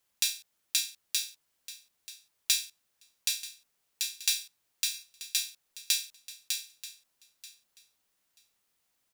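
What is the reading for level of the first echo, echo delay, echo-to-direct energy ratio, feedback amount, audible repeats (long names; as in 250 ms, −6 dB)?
−16.5 dB, 934 ms, −16.5 dB, 16%, 2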